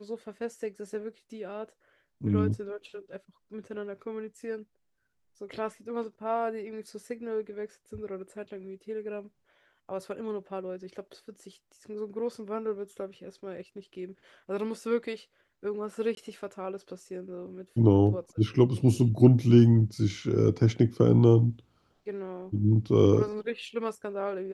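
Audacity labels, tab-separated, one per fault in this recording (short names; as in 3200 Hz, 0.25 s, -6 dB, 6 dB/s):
16.150000	16.170000	gap 22 ms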